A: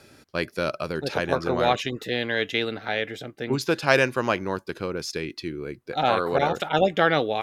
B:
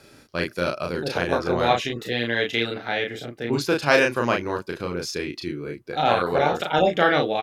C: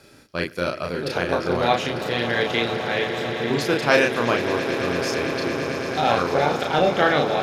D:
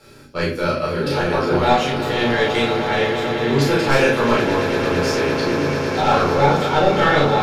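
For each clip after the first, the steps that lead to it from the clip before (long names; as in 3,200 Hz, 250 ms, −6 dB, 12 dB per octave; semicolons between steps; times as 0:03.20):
double-tracking delay 34 ms −3 dB
echo that builds up and dies away 112 ms, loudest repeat 8, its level −14.5 dB
soft clipping −13 dBFS, distortion −15 dB; rectangular room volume 300 cubic metres, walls furnished, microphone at 4.3 metres; level −2.5 dB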